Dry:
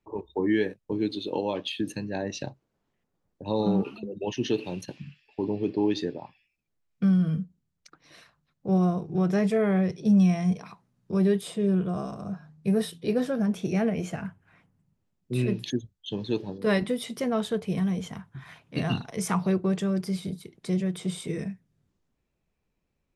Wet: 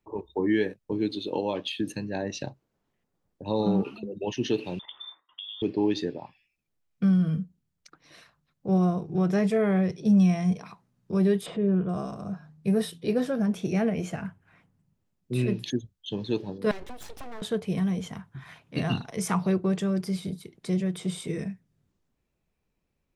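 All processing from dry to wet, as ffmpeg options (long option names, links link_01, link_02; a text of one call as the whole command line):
ffmpeg -i in.wav -filter_complex "[0:a]asettb=1/sr,asplit=3[link_01][link_02][link_03];[link_01]atrim=end=4.794[link_04];[link_02]atrim=start=4.79:end=5.62,asetpts=PTS-STARTPTS,afade=type=in:duration=0.004:curve=qsin,afade=type=out:start_time=0.826:duration=0.004:curve=qsin,agate=range=-33dB:threshold=-60dB:ratio=3:release=100:detection=peak,acompressor=threshold=-35dB:ratio=12:attack=3.2:release=140:knee=1:detection=peak,lowpass=frequency=3100:width_type=q:width=0.5098,lowpass=frequency=3100:width_type=q:width=0.6013,lowpass=frequency=3100:width_type=q:width=0.9,lowpass=frequency=3100:width_type=q:width=2.563,afreqshift=-3700[link_05];[link_03]atrim=start=5.616[link_06];[link_04][link_05]acrossfade=duration=0.004:curve1=hsin:curve2=qsin[link_07];[link_07][link_06]acrossfade=duration=0.004:curve1=qsin:curve2=hsin,asettb=1/sr,asplit=3[link_08][link_09][link_10];[link_08]atrim=end=11.464[link_11];[link_09]atrim=start=11.46:end=11.89,asetpts=PTS-STARTPTS,afade=type=in:duration=0.004:curve=qsin,afade=type=out:start_time=0.426:duration=0.004:curve=qsin,lowpass=2000,acompressor=mode=upward:threshold=-30dB:ratio=2.5:attack=3.2:release=140:knee=2.83:detection=peak[link_12];[link_10]atrim=start=11.886[link_13];[link_11][link_12]acrossfade=duration=0.004:curve1=hsin:curve2=qsin[link_14];[link_14][link_13]acrossfade=duration=0.004:curve1=qsin:curve2=hsin,asettb=1/sr,asplit=3[link_15][link_16][link_17];[link_15]atrim=end=16.714[link_18];[link_16]atrim=start=16.71:end=17.42,asetpts=PTS-STARTPTS,afade=type=in:duration=0.004:curve=qsin,afade=type=out:start_time=0.706:duration=0.004:curve=qsin,highshelf=frequency=5800:gain=-9.5,acompressor=threshold=-35dB:ratio=5:attack=3.2:release=140:knee=1:detection=peak,aeval=exprs='abs(val(0))':channel_layout=same[link_19];[link_17]atrim=start=17.416[link_20];[link_18][link_19]acrossfade=duration=0.004:curve1=hsin:curve2=qsin[link_21];[link_21][link_20]acrossfade=duration=0.004:curve1=qsin:curve2=hsin" out.wav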